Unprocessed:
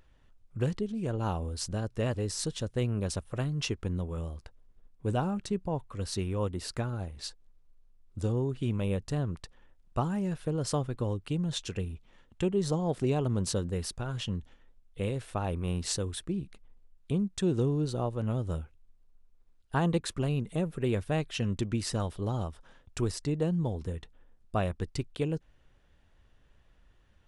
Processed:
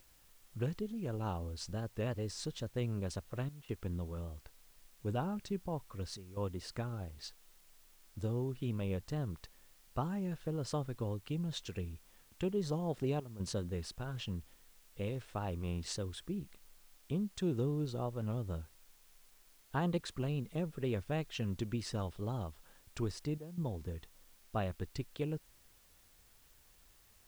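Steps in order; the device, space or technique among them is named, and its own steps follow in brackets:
worn cassette (low-pass filter 6,500 Hz; tape wow and flutter; tape dropouts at 0:03.49/0:06.17/0:13.20/0:23.38, 195 ms −13 dB; white noise bed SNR 27 dB)
level −6.5 dB

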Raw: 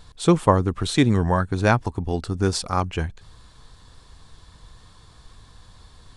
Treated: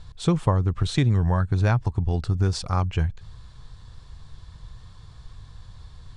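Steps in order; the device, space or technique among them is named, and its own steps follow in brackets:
jukebox (low-pass filter 7,400 Hz 12 dB per octave; low shelf with overshoot 180 Hz +7.5 dB, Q 1.5; downward compressor 3 to 1, threshold −15 dBFS, peak gain reduction 6.5 dB)
level −2.5 dB

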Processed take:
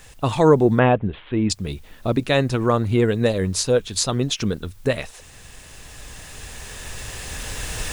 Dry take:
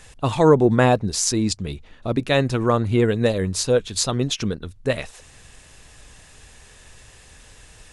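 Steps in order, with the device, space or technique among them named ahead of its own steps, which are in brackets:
cheap recorder with automatic gain (white noise bed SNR 39 dB; camcorder AGC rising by 6.3 dB per second)
0:00.79–0:01.50: Butterworth low-pass 3,400 Hz 96 dB per octave

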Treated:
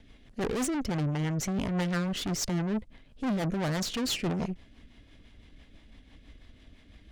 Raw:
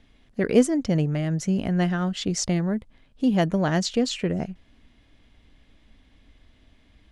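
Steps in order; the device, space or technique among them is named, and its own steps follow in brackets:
overdriven rotary cabinet (tube saturation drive 34 dB, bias 0.65; rotating-speaker cabinet horn 6 Hz)
level +8 dB

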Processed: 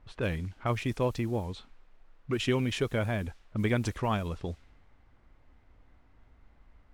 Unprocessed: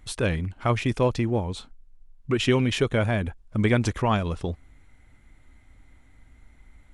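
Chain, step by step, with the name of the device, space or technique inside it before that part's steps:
cassette deck with a dynamic noise filter (white noise bed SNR 27 dB; low-pass that shuts in the quiet parts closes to 1,200 Hz, open at −20.5 dBFS)
level −6.5 dB

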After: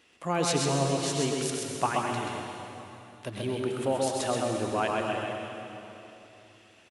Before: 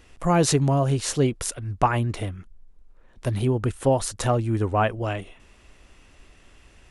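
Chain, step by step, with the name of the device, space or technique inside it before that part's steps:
PA in a hall (high-pass filter 190 Hz 12 dB per octave; parametric band 3,200 Hz +6 dB 1.2 octaves; single-tap delay 130 ms −4 dB; convolution reverb RT60 3.0 s, pre-delay 84 ms, DRR 2 dB)
level −8 dB

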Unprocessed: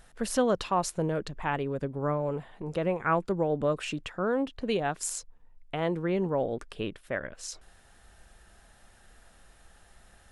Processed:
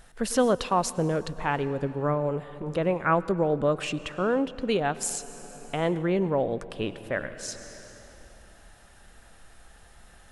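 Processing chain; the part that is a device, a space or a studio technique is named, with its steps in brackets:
compressed reverb return (on a send at −5.5 dB: convolution reverb RT60 2.6 s, pre-delay 95 ms + downward compressor 6 to 1, threshold −37 dBFS, peak gain reduction 14 dB)
on the sum: level +3 dB

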